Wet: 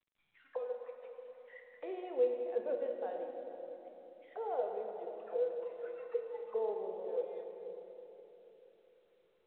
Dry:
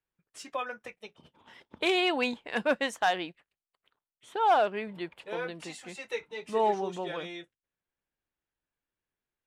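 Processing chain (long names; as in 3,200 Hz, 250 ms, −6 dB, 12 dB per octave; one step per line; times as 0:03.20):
mains-hum notches 50/100/150/200 Hz
envelope filter 490–2,300 Hz, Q 14, down, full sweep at −31.5 dBFS
feedback echo with a low-pass in the loop 485 ms, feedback 35%, low-pass 1,800 Hz, level −15.5 dB
on a send at −2 dB: convolution reverb RT60 3.4 s, pre-delay 4 ms
on the sum: level +3.5 dB
mu-law 64 kbit/s 8,000 Hz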